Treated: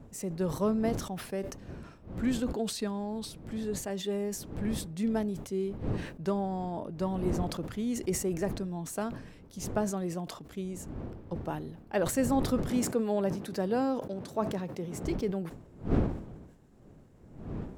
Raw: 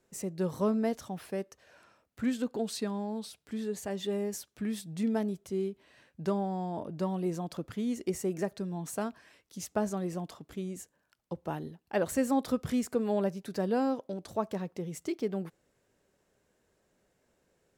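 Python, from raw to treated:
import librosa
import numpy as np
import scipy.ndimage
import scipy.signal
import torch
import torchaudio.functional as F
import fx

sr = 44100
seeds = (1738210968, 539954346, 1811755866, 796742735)

y = fx.dmg_wind(x, sr, seeds[0], corner_hz=250.0, level_db=-41.0)
y = fx.highpass(y, sr, hz=130.0, slope=12, at=(12.69, 15.04))
y = fx.sustainer(y, sr, db_per_s=81.0)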